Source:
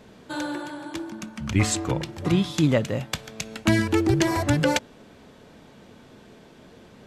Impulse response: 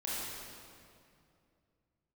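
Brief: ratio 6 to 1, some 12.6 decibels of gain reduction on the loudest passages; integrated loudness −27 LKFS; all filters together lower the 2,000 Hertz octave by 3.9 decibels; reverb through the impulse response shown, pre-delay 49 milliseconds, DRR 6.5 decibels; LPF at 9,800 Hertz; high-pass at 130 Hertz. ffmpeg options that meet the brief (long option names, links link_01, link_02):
-filter_complex "[0:a]highpass=130,lowpass=9800,equalizer=frequency=2000:width_type=o:gain=-5,acompressor=threshold=-31dB:ratio=6,asplit=2[link_01][link_02];[1:a]atrim=start_sample=2205,adelay=49[link_03];[link_02][link_03]afir=irnorm=-1:irlink=0,volume=-10.5dB[link_04];[link_01][link_04]amix=inputs=2:normalize=0,volume=7.5dB"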